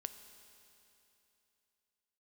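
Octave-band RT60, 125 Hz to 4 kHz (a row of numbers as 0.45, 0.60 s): 3.1, 3.0, 3.0, 3.0, 3.0, 3.0 s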